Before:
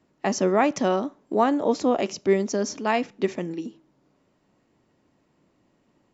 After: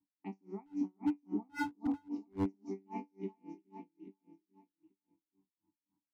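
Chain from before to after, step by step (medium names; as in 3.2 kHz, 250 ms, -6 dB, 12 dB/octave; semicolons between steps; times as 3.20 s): touch-sensitive phaser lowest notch 450 Hz, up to 3.7 kHz, full sweep at -18.5 dBFS; 1.01–1.60 s: tilt EQ -3.5 dB/octave; vowel filter u; feedback comb 97 Hz, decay 0.58 s, harmonics all, mix 90%; feedback delay 418 ms, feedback 38%, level -3.5 dB; wavefolder -32.5 dBFS; tone controls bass +12 dB, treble +5 dB; logarithmic tremolo 3.7 Hz, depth 36 dB; trim +4 dB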